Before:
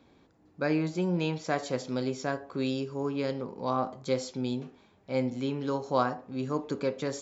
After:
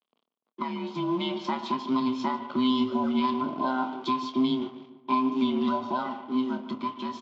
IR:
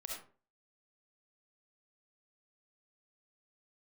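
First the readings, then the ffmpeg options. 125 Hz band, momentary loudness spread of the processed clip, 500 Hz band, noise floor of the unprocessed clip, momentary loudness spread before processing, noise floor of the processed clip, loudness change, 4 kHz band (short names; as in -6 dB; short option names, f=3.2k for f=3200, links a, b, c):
-8.0 dB, 7 LU, -3.0 dB, -63 dBFS, 5 LU, under -85 dBFS, +3.5 dB, +6.0 dB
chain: -filter_complex "[0:a]afftfilt=real='real(if(between(b,1,1008),(2*floor((b-1)/24)+1)*24-b,b),0)':imag='imag(if(between(b,1,1008),(2*floor((b-1)/24)+1)*24-b,b),0)*if(between(b,1,1008),-1,1)':win_size=2048:overlap=0.75,agate=range=-33dB:threshold=-59dB:ratio=3:detection=peak,acompressor=threshold=-31dB:ratio=6,alimiter=level_in=3.5dB:limit=-24dB:level=0:latency=1:release=374,volume=-3.5dB,dynaudnorm=f=220:g=11:m=4dB,acrusher=bits=7:mode=log:mix=0:aa=0.000001,aeval=exprs='sgn(val(0))*max(abs(val(0))-0.00188,0)':c=same,highpass=f=180:w=0.5412,highpass=f=180:w=1.3066,equalizer=f=240:t=q:w=4:g=7,equalizer=f=450:t=q:w=4:g=5,equalizer=f=650:t=q:w=4:g=4,equalizer=f=1.1k:t=q:w=4:g=8,equalizer=f=1.7k:t=q:w=4:g=-8,equalizer=f=3.2k:t=q:w=4:g=10,lowpass=f=4.6k:w=0.5412,lowpass=f=4.6k:w=1.3066,asplit=2[a][b];[b]adelay=27,volume=-11dB[c];[a][c]amix=inputs=2:normalize=0,asplit=2[d][e];[e]adelay=147,lowpass=f=2.4k:p=1,volume=-13dB,asplit=2[f][g];[g]adelay=147,lowpass=f=2.4k:p=1,volume=0.5,asplit=2[h][i];[i]adelay=147,lowpass=f=2.4k:p=1,volume=0.5,asplit=2[j][k];[k]adelay=147,lowpass=f=2.4k:p=1,volume=0.5,asplit=2[l][m];[m]adelay=147,lowpass=f=2.4k:p=1,volume=0.5[n];[d][f][h][j][l][n]amix=inputs=6:normalize=0,volume=4.5dB"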